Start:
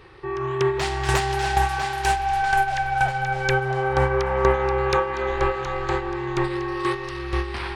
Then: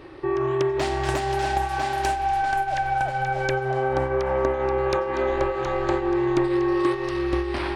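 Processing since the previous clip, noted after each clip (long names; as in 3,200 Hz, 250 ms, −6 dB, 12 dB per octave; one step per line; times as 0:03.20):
downward compressor, threshold −24 dBFS, peak gain reduction 10.5 dB
hollow resonant body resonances 300/590 Hz, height 15 dB, ringing for 40 ms
convolution reverb RT60 0.35 s, pre-delay 82 ms, DRR 23 dB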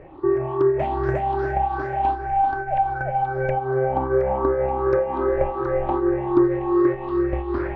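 rippled gain that drifts along the octave scale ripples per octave 0.52, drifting +2.6 Hz, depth 14 dB
low-pass filter 1,200 Hz 12 dB per octave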